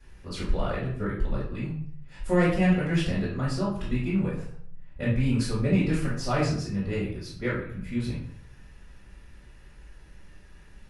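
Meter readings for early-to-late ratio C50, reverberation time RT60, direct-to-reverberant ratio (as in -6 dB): 3.0 dB, 0.60 s, -8.5 dB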